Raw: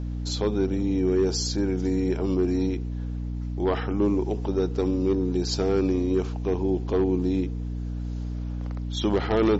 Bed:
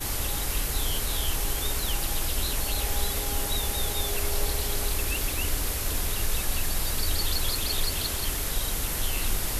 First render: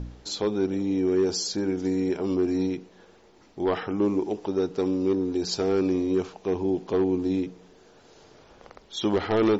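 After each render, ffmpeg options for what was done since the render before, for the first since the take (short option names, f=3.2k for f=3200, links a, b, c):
-af "bandreject=f=60:t=h:w=4,bandreject=f=120:t=h:w=4,bandreject=f=180:t=h:w=4,bandreject=f=240:t=h:w=4,bandreject=f=300:t=h:w=4"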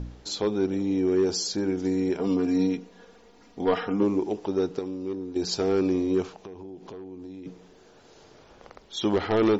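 -filter_complex "[0:a]asettb=1/sr,asplit=3[a][b][c];[a]atrim=end=2.194[d];[b]atrim=start=2.19:end=4.03,asetpts=PTS-STARTPTS,afade=t=in:d=0.004:c=qsin,afade=t=out:st=1.836:d=0.004:c=qsin,aecho=1:1:4.2:0.66,atrim=end_sample=81144[e];[c]atrim=start=4.026[f];[d][e]acrossfade=d=0.004:c1=hsin:c2=qsin[g];[g][f]acrossfade=d=0.004:c1=qsin:c2=hsin,asplit=3[h][i][j];[h]afade=t=out:st=6.3:d=0.02[k];[i]acompressor=threshold=-38dB:ratio=8:attack=3.2:release=140:knee=1:detection=peak,afade=t=in:st=6.3:d=0.02,afade=t=out:st=7.45:d=0.02[l];[j]afade=t=in:st=7.45:d=0.02[m];[k][l][m]amix=inputs=3:normalize=0,asplit=3[n][o][p];[n]atrim=end=4.792[q];[o]atrim=start=4.788:end=5.362,asetpts=PTS-STARTPTS,volume=-8dB[r];[p]atrim=start=5.358[s];[q][r]acrossfade=d=0.004:c1=hsin:c2=hsin[t];[t][s]acrossfade=d=0.004:c1=hsin:c2=hsin"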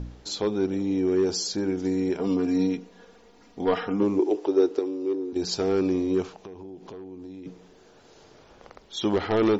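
-filter_complex "[0:a]asettb=1/sr,asplit=3[a][b][c];[a]atrim=end=4.194[d];[b]atrim=start=4.19:end=5.33,asetpts=PTS-STARTPTS,afade=t=in:d=0.004:c=qsin,afade=t=out:st=1.136:d=0.004:c=qsin,lowshelf=f=240:t=q:w=3:g=-11[e];[c]atrim=start=5.326[f];[d][e]acrossfade=d=0.004:c1=hsin:c2=qsin[g];[g][f]acrossfade=d=0.004:c1=qsin:c2=hsin"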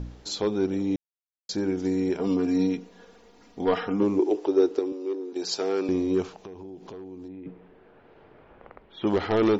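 -filter_complex "[0:a]asettb=1/sr,asplit=3[a][b][c];[a]atrim=end=4.924[d];[b]atrim=start=4.92:end=5.89,asetpts=PTS-STARTPTS,afade=t=in:d=0.004:c=qsin,afade=t=out:st=0.966:d=0.004:c=qsin,highpass=370[e];[c]atrim=start=5.886[f];[d][e]acrossfade=d=0.004:c1=hsin:c2=qsin[g];[g][f]acrossfade=d=0.004:c1=qsin:c2=hsin,asettb=1/sr,asplit=3[h][i][j];[h]atrim=end=7.284[k];[i]atrim=start=7.28:end=9.07,asetpts=PTS-STARTPTS,afade=t=in:d=0.004:c=qsin,afade=t=out:st=1.786:d=0.004:c=qsin,lowpass=f=2.5k:w=0.5412,lowpass=f=2.5k:w=1.3066[l];[j]atrim=start=9.066[m];[k][l]acrossfade=d=0.004:c1=hsin:c2=qsin[n];[n][m]acrossfade=d=0.004:c1=qsin:c2=hsin,asplit=3[o][p][q];[o]atrim=end=0.96,asetpts=PTS-STARTPTS,afade=t=out:st=0.956:d=0.004:c=hsin[r];[p]atrim=start=0.96:end=1.49,asetpts=PTS-STARTPTS,volume=0[s];[q]atrim=start=1.49,asetpts=PTS-STARTPTS,afade=t=in:d=0.004:c=hsin[t];[r][s][t]concat=n=3:v=0:a=1"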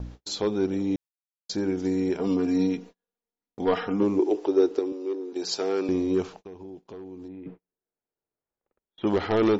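-af "agate=range=-41dB:threshold=-42dB:ratio=16:detection=peak"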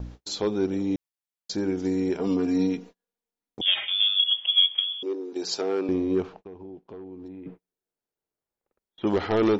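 -filter_complex "[0:a]asettb=1/sr,asplit=3[a][b][c];[a]atrim=end=3.614[d];[b]atrim=start=3.61:end=5.03,asetpts=PTS-STARTPTS,afade=t=in:d=0.004:c=qsin,afade=t=out:st=1.416:d=0.004:c=qsin,lowpass=f=3.1k:t=q:w=0.5098,lowpass=f=3.1k:t=q:w=0.6013,lowpass=f=3.1k:t=q:w=0.9,lowpass=f=3.1k:t=q:w=2.563,afreqshift=-3700[e];[c]atrim=start=5.026[f];[d][e]acrossfade=d=0.004:c1=hsin:c2=qsin[g];[g][f]acrossfade=d=0.004:c1=qsin:c2=hsin,asettb=1/sr,asplit=3[h][i][j];[h]atrim=end=5.614[k];[i]atrim=start=5.61:end=7.26,asetpts=PTS-STARTPTS,afade=t=in:d=0.004:c=qsin,afade=t=out:st=1.646:d=0.004:c=qsin,adynamicsmooth=sensitivity=3:basefreq=2.7k[l];[j]atrim=start=7.256[m];[k][l]acrossfade=d=0.004:c1=hsin:c2=qsin[n];[n][m]acrossfade=d=0.004:c1=qsin:c2=hsin"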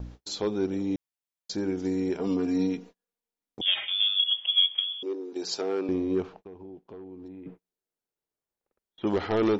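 -af "volume=-2.5dB"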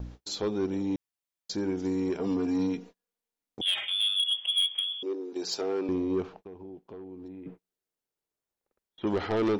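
-af "asoftclip=type=tanh:threshold=-20.5dB"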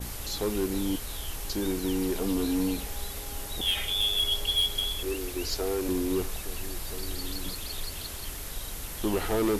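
-filter_complex "[1:a]volume=-8.5dB[a];[0:a][a]amix=inputs=2:normalize=0"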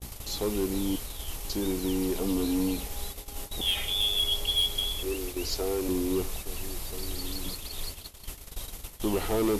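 -af "equalizer=f=1.6k:t=o:w=0.49:g=-5.5,agate=range=-25dB:threshold=-35dB:ratio=16:detection=peak"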